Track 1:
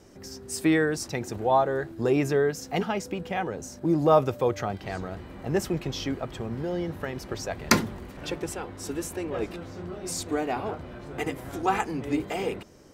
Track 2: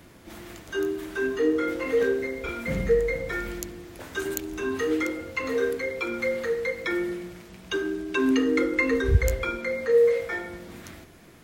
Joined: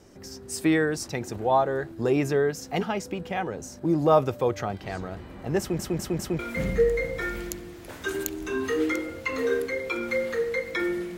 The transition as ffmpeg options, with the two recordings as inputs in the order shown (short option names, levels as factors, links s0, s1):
-filter_complex "[0:a]apad=whole_dur=11.17,atrim=end=11.17,asplit=4[s0][s1][s2][s3];[s0]atrim=end=5.792[s4];[s1]atrim=start=5.588:end=5.792[s5];[s2]atrim=start=5.588:end=5.792[s6];[s3]atrim=start=5.588:end=5.792[s7];[1:a]atrim=start=2.498:end=7.28[s8];[s4][s5]acrossfade=d=0.004:c1=hsin:c2=hsin[s9];[s9][s6]acrossfade=d=0.004:c1=hsin:c2=hsin[s10];[s10][s7]acrossfade=d=0.004:c1=hsin:c2=hsin[s11];[s11][s8]acrossfade=d=0.004:c1=hsin:c2=hsin"